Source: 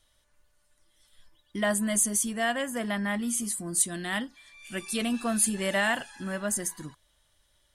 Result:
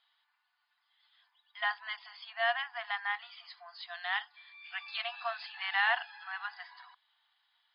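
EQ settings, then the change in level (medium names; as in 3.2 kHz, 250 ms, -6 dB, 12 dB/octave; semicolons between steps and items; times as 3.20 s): brick-wall FIR high-pass 680 Hz; brick-wall FIR low-pass 5.1 kHz; distance through air 95 m; 0.0 dB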